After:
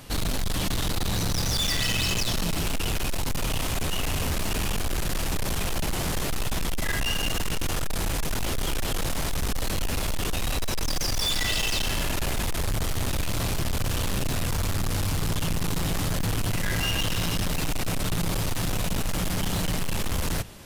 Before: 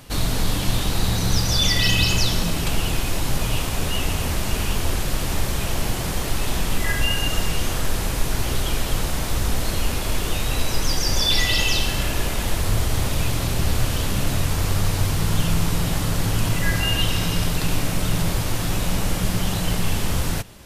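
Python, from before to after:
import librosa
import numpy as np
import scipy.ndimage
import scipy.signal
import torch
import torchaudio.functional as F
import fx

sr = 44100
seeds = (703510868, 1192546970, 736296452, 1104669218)

y = fx.hum_notches(x, sr, base_hz=60, count=2)
y = np.clip(10.0 ** (23.0 / 20.0) * y, -1.0, 1.0) / 10.0 ** (23.0 / 20.0)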